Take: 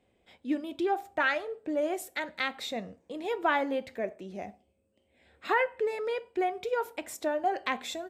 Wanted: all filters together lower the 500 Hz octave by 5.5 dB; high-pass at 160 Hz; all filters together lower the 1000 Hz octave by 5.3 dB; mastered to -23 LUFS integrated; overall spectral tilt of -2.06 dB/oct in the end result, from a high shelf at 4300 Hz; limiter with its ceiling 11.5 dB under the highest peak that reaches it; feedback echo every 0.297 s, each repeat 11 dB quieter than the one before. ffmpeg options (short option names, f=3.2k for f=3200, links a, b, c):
-af "highpass=160,equalizer=f=500:t=o:g=-5.5,equalizer=f=1k:t=o:g=-5.5,highshelf=f=4.3k:g=8,alimiter=level_in=1dB:limit=-24dB:level=0:latency=1,volume=-1dB,aecho=1:1:297|594|891:0.282|0.0789|0.0221,volume=13.5dB"